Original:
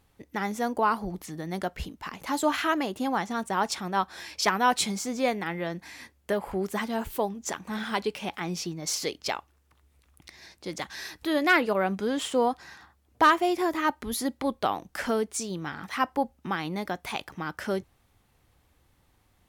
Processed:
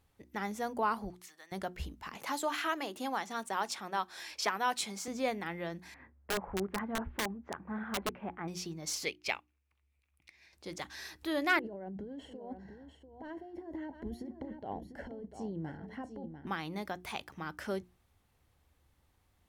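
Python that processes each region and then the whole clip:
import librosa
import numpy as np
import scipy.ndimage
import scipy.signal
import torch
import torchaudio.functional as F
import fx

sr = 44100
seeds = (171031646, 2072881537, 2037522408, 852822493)

y = fx.chain(x, sr, fx.highpass(hz=1200.0, slope=12),
    fx.resample_linear(factor=2), at=(1.1, 1.52))
y = fx.chain(y, sr, fx.highpass(hz=420.0, slope=6),
    fx.band_squash(depth_pct=40), at=(2.15, 5.08))
y = fx.chain(y, sr, fx.lowpass(hz=1800.0, slope=24),
    fx.low_shelf(hz=290.0, db=3.0),
    fx.overflow_wrap(gain_db=20.0), at=(5.94, 8.48))
y = fx.chain(y, sr, fx.peak_eq(hz=2400.0, db=13.5, octaves=0.54),
    fx.upward_expand(threshold_db=-47.0, expansion=1.5), at=(9.05, 10.53))
y = fx.chain(y, sr, fx.moving_average(points=36),
    fx.over_compress(threshold_db=-35.0, ratio=-1.0),
    fx.echo_single(ms=695, db=-9.0), at=(11.59, 16.47))
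y = fx.peak_eq(y, sr, hz=67.0, db=7.5, octaves=0.5)
y = fx.hum_notches(y, sr, base_hz=60, count=6)
y = y * librosa.db_to_amplitude(-7.0)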